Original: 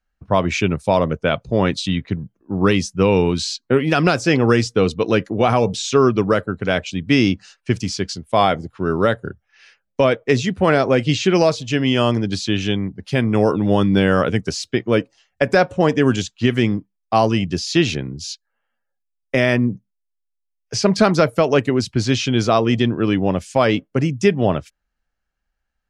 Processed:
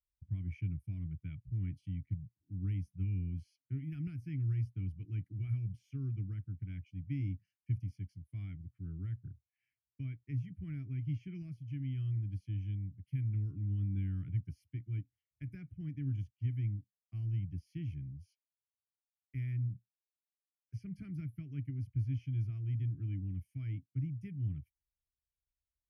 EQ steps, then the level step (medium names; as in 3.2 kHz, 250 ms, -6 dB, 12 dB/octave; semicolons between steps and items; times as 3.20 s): vowel filter i; inverse Chebyshev band-stop 220–8000 Hz, stop band 40 dB; +16.5 dB